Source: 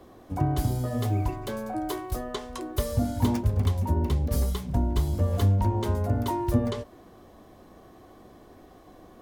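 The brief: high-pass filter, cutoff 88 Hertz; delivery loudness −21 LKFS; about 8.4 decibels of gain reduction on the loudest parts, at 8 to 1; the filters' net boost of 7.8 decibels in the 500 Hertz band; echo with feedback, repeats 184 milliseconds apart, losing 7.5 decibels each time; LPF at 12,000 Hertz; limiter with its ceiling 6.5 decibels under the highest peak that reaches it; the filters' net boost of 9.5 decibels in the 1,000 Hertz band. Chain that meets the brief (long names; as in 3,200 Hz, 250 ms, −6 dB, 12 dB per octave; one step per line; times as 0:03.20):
high-pass filter 88 Hz
low-pass filter 12,000 Hz
parametric band 500 Hz +7.5 dB
parametric band 1,000 Hz +9 dB
downward compressor 8 to 1, threshold −25 dBFS
brickwall limiter −21.5 dBFS
repeating echo 184 ms, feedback 42%, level −7.5 dB
level +9.5 dB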